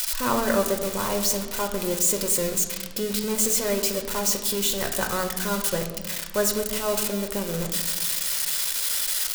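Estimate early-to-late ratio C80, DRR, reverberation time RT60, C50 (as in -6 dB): 10.5 dB, 3.5 dB, 1.2 s, 8.5 dB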